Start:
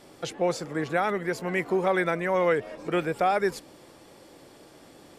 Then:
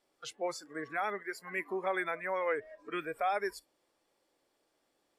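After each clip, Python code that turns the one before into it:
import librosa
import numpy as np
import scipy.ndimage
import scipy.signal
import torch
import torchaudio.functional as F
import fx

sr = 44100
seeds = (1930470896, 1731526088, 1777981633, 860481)

y = fx.noise_reduce_blind(x, sr, reduce_db=17)
y = fx.peak_eq(y, sr, hz=120.0, db=-13.0, octaves=2.5)
y = F.gain(torch.from_numpy(y), -6.0).numpy()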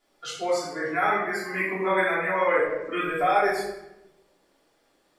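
y = fx.room_shoebox(x, sr, seeds[0], volume_m3=360.0, walls='mixed', distance_m=3.2)
y = F.gain(torch.from_numpy(y), 2.0).numpy()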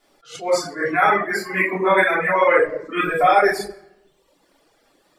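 y = fx.dereverb_blind(x, sr, rt60_s=0.92)
y = fx.wow_flutter(y, sr, seeds[1], rate_hz=2.1, depth_cents=20.0)
y = fx.attack_slew(y, sr, db_per_s=170.0)
y = F.gain(torch.from_numpy(y), 8.5).numpy()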